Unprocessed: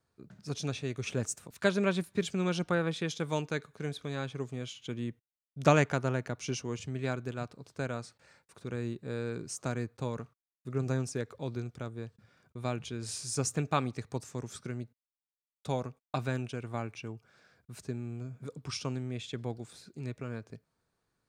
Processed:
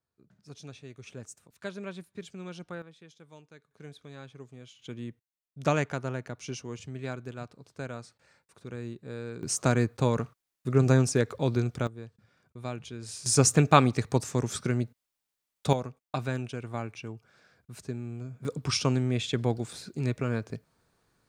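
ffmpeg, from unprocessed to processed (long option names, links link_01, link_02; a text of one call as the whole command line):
ffmpeg -i in.wav -af "asetnsamples=nb_out_samples=441:pad=0,asendcmd='2.82 volume volume -19.5dB;3.71 volume volume -9.5dB;4.79 volume volume -2.5dB;9.43 volume volume 10dB;11.87 volume volume -2dB;13.26 volume volume 10.5dB;15.73 volume volume 1.5dB;18.45 volume volume 9.5dB',volume=-10.5dB" out.wav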